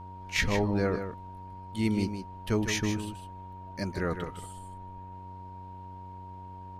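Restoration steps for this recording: de-hum 93.3 Hz, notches 12; band-stop 940 Hz, Q 30; inverse comb 155 ms -8.5 dB

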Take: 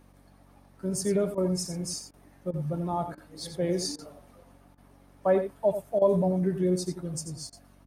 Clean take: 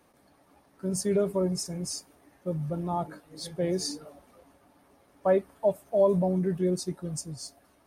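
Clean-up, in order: de-hum 47 Hz, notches 6; interpolate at 1.35/2.11/2.51/3.15/3.96/4.75/5.99/7.50 s, 25 ms; inverse comb 88 ms -9.5 dB

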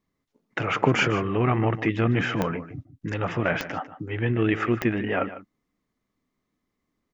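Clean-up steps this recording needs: de-click; inverse comb 150 ms -14 dB

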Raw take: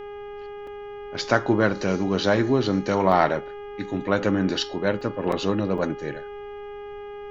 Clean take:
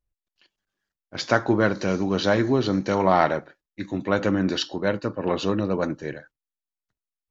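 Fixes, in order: de-hum 409.9 Hz, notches 8; interpolate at 0.67/3.12/5.01/5.32/5.78 s, 3.5 ms; expander -29 dBFS, range -21 dB

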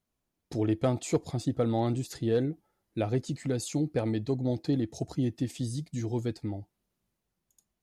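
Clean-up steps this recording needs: clip repair -16.5 dBFS

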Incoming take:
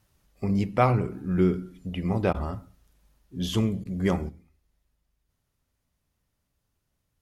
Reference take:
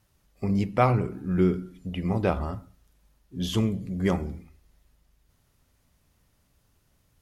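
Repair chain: interpolate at 2.33/3.84 s, 12 ms; trim 0 dB, from 4.29 s +10.5 dB

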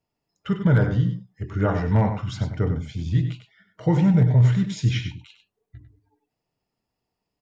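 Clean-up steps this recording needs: clip repair -10 dBFS; inverse comb 97 ms -9 dB

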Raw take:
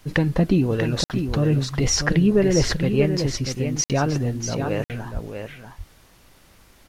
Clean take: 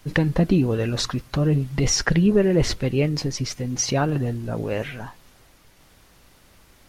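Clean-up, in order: 1.27–1.39 s: high-pass 140 Hz 24 dB/octave; 5.13–5.25 s: high-pass 140 Hz 24 dB/octave; interpolate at 1.04/3.84/4.84 s, 58 ms; inverse comb 640 ms -7 dB

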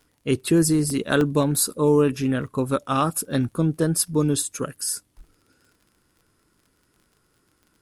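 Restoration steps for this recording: de-click; interpolate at 0.90/1.21/4.42/5.37 s, 1.2 ms

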